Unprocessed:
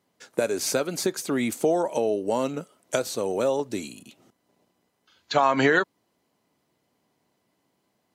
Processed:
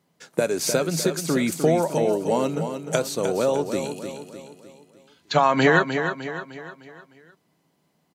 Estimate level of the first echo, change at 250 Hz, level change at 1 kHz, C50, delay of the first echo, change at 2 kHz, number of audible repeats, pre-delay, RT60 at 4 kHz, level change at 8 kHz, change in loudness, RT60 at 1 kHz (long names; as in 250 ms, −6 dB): −8.0 dB, +3.5 dB, +3.0 dB, no reverb audible, 304 ms, +3.0 dB, 5, no reverb audible, no reverb audible, +3.0 dB, +2.5 dB, no reverb audible